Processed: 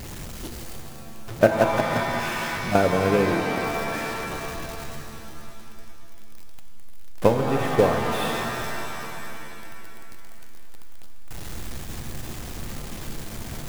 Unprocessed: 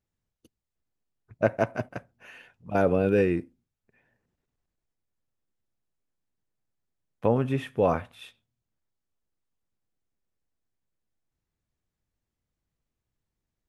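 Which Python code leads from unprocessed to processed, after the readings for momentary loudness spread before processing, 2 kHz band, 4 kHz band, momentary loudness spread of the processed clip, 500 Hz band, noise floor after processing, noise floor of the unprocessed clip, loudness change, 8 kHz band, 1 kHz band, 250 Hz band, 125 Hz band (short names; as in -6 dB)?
13 LU, +10.5 dB, +17.0 dB, 20 LU, +5.0 dB, -36 dBFS, under -85 dBFS, +1.0 dB, n/a, +9.0 dB, +4.0 dB, +4.0 dB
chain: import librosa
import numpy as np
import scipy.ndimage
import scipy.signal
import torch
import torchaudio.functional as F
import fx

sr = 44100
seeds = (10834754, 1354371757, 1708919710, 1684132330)

y = x + 0.5 * 10.0 ** (-26.5 / 20.0) * np.sign(x)
y = fx.transient(y, sr, attack_db=11, sustain_db=-5)
y = fx.rev_shimmer(y, sr, seeds[0], rt60_s=2.7, semitones=7, shimmer_db=-2, drr_db=5.0)
y = y * librosa.db_to_amplitude(-3.5)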